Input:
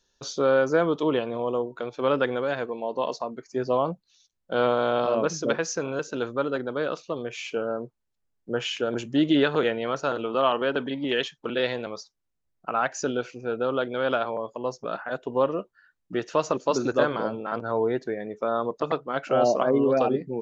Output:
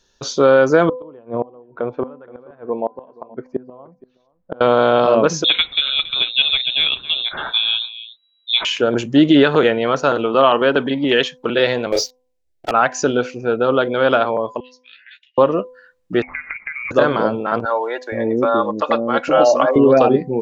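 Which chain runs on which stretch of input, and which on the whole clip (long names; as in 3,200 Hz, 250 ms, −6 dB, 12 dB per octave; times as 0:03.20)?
0:00.89–0:04.61: low-pass filter 1,200 Hz + gate with flip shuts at −19 dBFS, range −27 dB + single-tap delay 473 ms −22 dB
0:05.44–0:08.65: voice inversion scrambler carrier 3,900 Hz + single-tap delay 278 ms −15 dB
0:11.92–0:12.71: leveller curve on the samples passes 3 + phaser with its sweep stopped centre 460 Hz, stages 4 + double-tracking delay 31 ms −2.5 dB
0:14.60–0:15.38: Butterworth high-pass 1,900 Hz 72 dB per octave + high-frequency loss of the air 250 metres + double-tracking delay 14 ms −7 dB
0:16.22–0:16.91: downward compressor 8 to 1, threshold −34 dBFS + voice inversion scrambler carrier 2,600 Hz
0:17.65–0:19.76: comb filter 3.6 ms, depth 52% + multiband delay without the direct sound highs, lows 470 ms, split 490 Hz
whole clip: high-shelf EQ 6,600 Hz −4.5 dB; hum removal 252.5 Hz, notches 4; boost into a limiter +11.5 dB; level −1 dB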